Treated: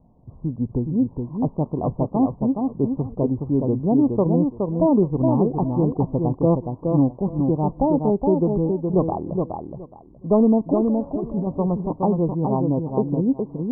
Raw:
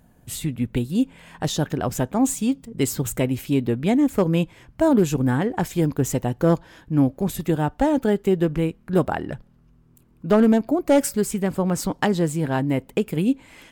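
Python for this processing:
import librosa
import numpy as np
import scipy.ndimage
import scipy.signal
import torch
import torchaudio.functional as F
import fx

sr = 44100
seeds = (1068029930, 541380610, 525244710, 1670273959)

y = scipy.signal.sosfilt(scipy.signal.butter(16, 1100.0, 'lowpass', fs=sr, output='sos'), x)
y = fx.over_compress(y, sr, threshold_db=-27.0, ratio=-1.0, at=(10.74, 11.47))
y = fx.echo_feedback(y, sr, ms=419, feedback_pct=18, wet_db=-4.5)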